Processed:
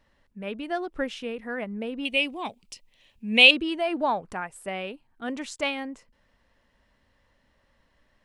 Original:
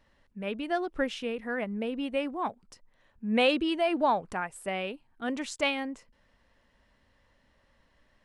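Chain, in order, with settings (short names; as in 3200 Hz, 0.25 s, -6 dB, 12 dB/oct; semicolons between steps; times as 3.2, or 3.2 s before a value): 2.05–3.51 resonant high shelf 2000 Hz +9.5 dB, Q 3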